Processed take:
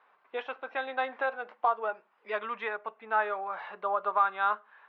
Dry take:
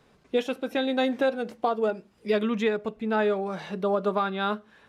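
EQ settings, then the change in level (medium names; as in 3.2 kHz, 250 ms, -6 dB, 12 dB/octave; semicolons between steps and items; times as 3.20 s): resonant high-pass 1 kHz, resonance Q 1.8; low-pass 2.4 kHz 12 dB/octave; distance through air 200 m; 0.0 dB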